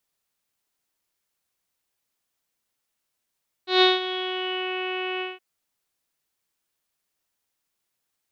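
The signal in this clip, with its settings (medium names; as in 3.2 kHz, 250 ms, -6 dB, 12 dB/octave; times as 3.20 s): synth note saw F#4 24 dB/octave, low-pass 2.8 kHz, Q 7.4, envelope 0.5 oct, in 1.02 s, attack 145 ms, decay 0.18 s, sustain -13.5 dB, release 0.18 s, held 1.54 s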